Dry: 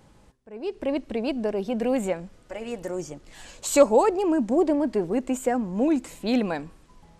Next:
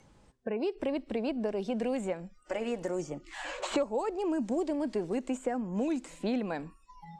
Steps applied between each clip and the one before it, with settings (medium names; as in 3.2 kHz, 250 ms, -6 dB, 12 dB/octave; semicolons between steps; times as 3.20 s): spectral noise reduction 27 dB; low-pass 9.5 kHz 24 dB/octave; three bands compressed up and down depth 100%; trim -8 dB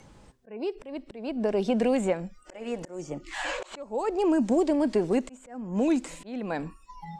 slow attack 436 ms; trim +7.5 dB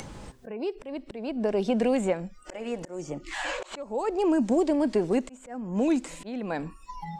upward compressor, threshold -31 dBFS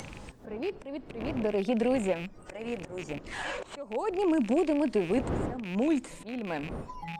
rattle on loud lows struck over -39 dBFS, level -28 dBFS; wind noise 460 Hz -40 dBFS; trim -2.5 dB; Opus 48 kbps 48 kHz